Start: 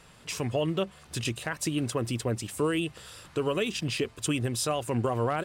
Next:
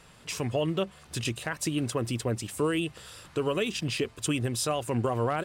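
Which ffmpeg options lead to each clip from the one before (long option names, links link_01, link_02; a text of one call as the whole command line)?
ffmpeg -i in.wav -af anull out.wav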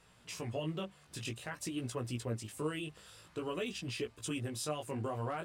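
ffmpeg -i in.wav -af "flanger=delay=16:depth=3.9:speed=0.52,volume=-6.5dB" out.wav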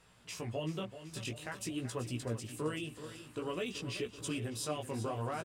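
ffmpeg -i in.wav -af "aecho=1:1:382|764|1146|1528|1910|2292|2674:0.251|0.148|0.0874|0.0516|0.0304|0.018|0.0106" out.wav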